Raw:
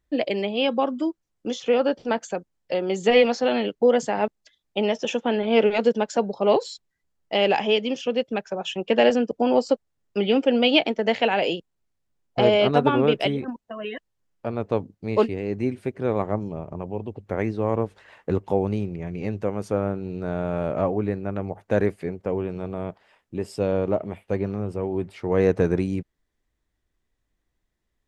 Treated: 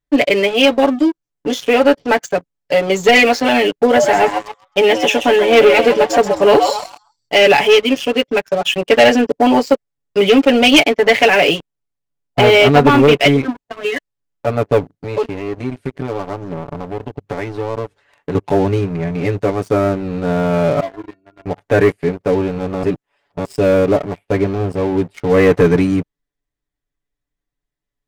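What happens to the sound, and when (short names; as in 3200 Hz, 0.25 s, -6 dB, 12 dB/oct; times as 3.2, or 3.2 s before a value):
3.72–7.36 frequency-shifting echo 0.13 s, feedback 39%, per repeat +110 Hz, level -9 dB
14.93–18.35 compressor 3:1, threshold -30 dBFS
20.8–21.46 metallic resonator 330 Hz, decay 0.2 s, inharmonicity 0.008
22.83–23.45 reverse
whole clip: comb 7 ms, depth 99%; dynamic EQ 2100 Hz, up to +8 dB, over -41 dBFS, Q 2.3; sample leveller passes 3; gain -3 dB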